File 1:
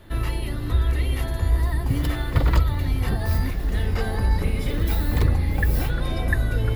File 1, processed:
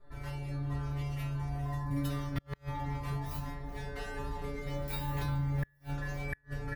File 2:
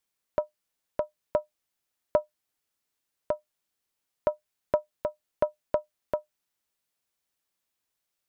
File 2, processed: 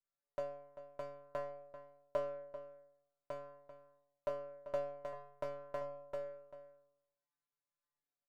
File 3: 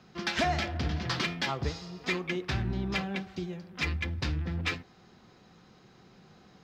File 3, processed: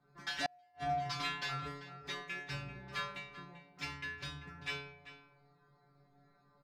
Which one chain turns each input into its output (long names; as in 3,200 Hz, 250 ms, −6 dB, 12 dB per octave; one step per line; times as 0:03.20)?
adaptive Wiener filter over 15 samples
low-shelf EQ 400 Hz −10 dB
stiff-string resonator 140 Hz, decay 0.85 s, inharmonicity 0.002
flanger 0.46 Hz, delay 5 ms, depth 1.1 ms, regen +53%
slap from a distant wall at 67 metres, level −12 dB
gate with flip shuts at −39 dBFS, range −38 dB
low-shelf EQ 110 Hz +10.5 dB
level +15 dB